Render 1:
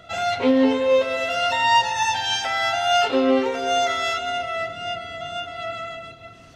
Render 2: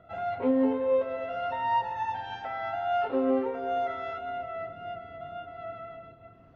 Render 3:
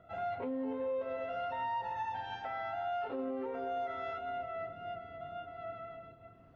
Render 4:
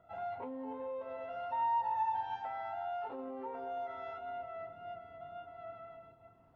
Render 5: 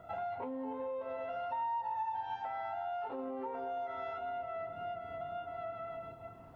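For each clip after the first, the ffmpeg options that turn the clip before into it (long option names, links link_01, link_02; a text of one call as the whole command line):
ffmpeg -i in.wav -af "lowpass=1200,volume=-7dB" out.wav
ffmpeg -i in.wav -af "alimiter=level_in=2dB:limit=-24dB:level=0:latency=1:release=73,volume=-2dB,volume=-4dB" out.wav
ffmpeg -i in.wav -af "equalizer=frequency=900:width_type=o:width=0.48:gain=12,volume=-7dB" out.wav
ffmpeg -i in.wav -af "acompressor=threshold=-51dB:ratio=3,volume=11dB" out.wav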